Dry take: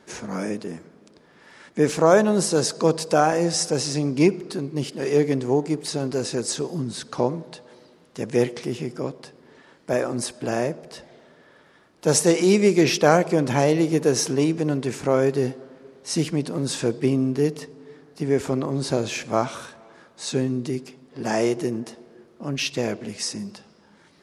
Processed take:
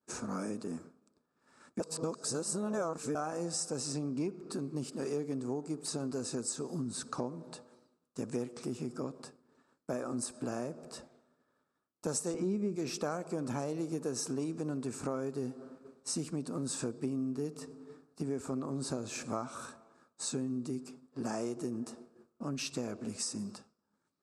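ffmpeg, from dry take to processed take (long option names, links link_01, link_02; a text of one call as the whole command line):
ffmpeg -i in.wav -filter_complex "[0:a]asettb=1/sr,asplit=3[link_01][link_02][link_03];[link_01]atrim=end=3.924[link_04];[link_02]atrim=start=3.92:end=4.52,asetpts=PTS-STARTPTS,afade=type=in:duration=0.004:curve=qsin,afade=type=out:start_time=0.596:duration=0.004:curve=qsin,highshelf=frequency=6400:gain=-9[link_05];[link_03]atrim=start=4.516[link_06];[link_04][link_05]acrossfade=duration=0.004:curve1=hsin:curve2=qsin[link_07];[link_07][link_06]acrossfade=duration=0.004:curve1=qsin:curve2=hsin,asettb=1/sr,asplit=3[link_08][link_09][link_10];[link_08]atrim=end=12.344[link_11];[link_09]atrim=start=12.34:end=12.76,asetpts=PTS-STARTPTS,afade=type=in:duration=0.004:curve=qsin,afade=type=out:start_time=0.416:duration=0.004:curve=qsin,aemphasis=mode=reproduction:type=riaa[link_12];[link_10]atrim=start=12.756[link_13];[link_11][link_12]acrossfade=duration=0.004:curve1=hsin:curve2=qsin[link_14];[link_14][link_13]acrossfade=duration=0.004:curve1=qsin:curve2=hsin,asplit=3[link_15][link_16][link_17];[link_15]atrim=end=1.802[link_18];[link_16]atrim=start=1.798:end=3.152,asetpts=PTS-STARTPTS,areverse[link_19];[link_17]atrim=start=3.148[link_20];[link_18][link_19]acrossfade=duration=0.004:curve1=hsin:curve2=hsin[link_21];[link_21][link_20]acrossfade=duration=0.004:curve1=hsin:curve2=hsin,agate=range=-33dB:threshold=-41dB:ratio=3:detection=peak,equalizer=frequency=100:width_type=o:width=0.33:gain=3,equalizer=frequency=250:width_type=o:width=0.33:gain=7,equalizer=frequency=1250:width_type=o:width=0.33:gain=8,equalizer=frequency=2000:width_type=o:width=0.33:gain=-10,equalizer=frequency=3150:width_type=o:width=0.33:gain=-9,equalizer=frequency=8000:width_type=o:width=0.33:gain=10,acompressor=threshold=-27dB:ratio=4,volume=-7dB" out.wav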